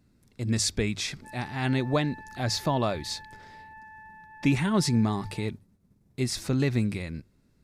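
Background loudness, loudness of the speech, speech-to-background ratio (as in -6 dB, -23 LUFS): -47.0 LUFS, -28.5 LUFS, 18.5 dB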